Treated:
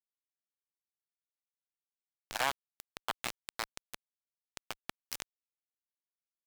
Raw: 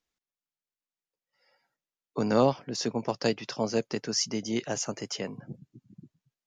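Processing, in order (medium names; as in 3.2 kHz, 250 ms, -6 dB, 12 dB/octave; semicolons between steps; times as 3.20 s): comb filter that takes the minimum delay 0.37 ms; low-pass that closes with the level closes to 1.9 kHz, closed at -26.5 dBFS; elliptic high-pass 770 Hz, stop band 60 dB; bit crusher 5-bit; vibrato 0.41 Hz 7 cents; transformer saturation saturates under 1.7 kHz; trim +5 dB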